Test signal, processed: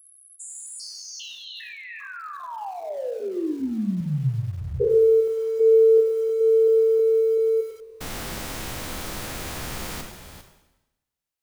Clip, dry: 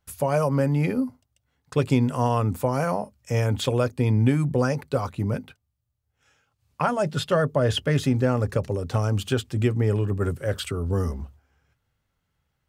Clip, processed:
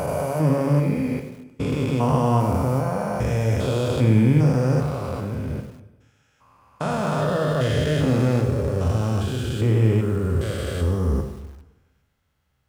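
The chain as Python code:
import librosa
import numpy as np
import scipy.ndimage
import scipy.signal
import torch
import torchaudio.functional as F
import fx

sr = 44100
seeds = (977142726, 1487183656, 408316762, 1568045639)

y = fx.spec_steps(x, sr, hold_ms=400)
y = fx.rev_plate(y, sr, seeds[0], rt60_s=1.0, hf_ratio=0.95, predelay_ms=0, drr_db=4.5)
y = fx.echo_crushed(y, sr, ms=97, feedback_pct=35, bits=7, wet_db=-15)
y = y * librosa.db_to_amplitude(4.5)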